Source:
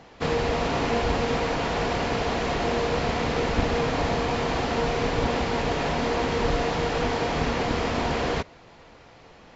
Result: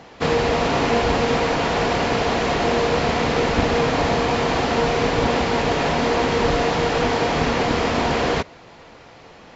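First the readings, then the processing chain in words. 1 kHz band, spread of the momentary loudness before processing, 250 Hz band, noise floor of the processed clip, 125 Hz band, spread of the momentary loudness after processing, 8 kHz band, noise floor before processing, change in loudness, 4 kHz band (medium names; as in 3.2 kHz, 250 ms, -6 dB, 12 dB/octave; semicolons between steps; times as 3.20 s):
+6.0 dB, 1 LU, +5.5 dB, -45 dBFS, +4.0 dB, 1 LU, no reading, -50 dBFS, +5.5 dB, +6.0 dB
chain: bass shelf 67 Hz -8 dB; trim +6 dB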